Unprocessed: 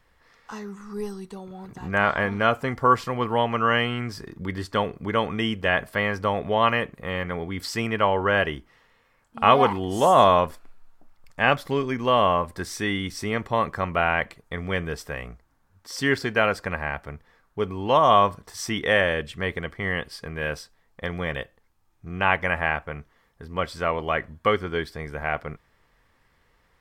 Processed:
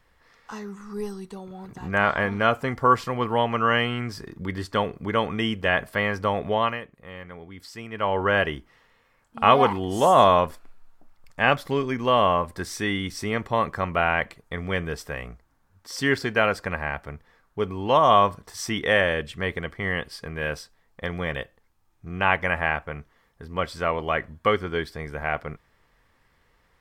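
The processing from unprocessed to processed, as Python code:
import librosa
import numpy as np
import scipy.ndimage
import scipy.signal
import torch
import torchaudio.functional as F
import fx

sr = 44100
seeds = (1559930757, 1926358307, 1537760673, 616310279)

y = fx.edit(x, sr, fx.fade_down_up(start_s=6.51, length_s=1.69, db=-11.5, fade_s=0.3), tone=tone)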